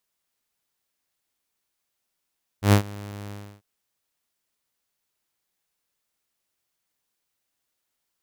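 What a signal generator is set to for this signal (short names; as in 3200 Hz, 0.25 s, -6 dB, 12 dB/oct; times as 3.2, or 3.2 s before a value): ADSR saw 102 Hz, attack 0.108 s, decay 93 ms, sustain -23 dB, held 0.69 s, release 0.304 s -9 dBFS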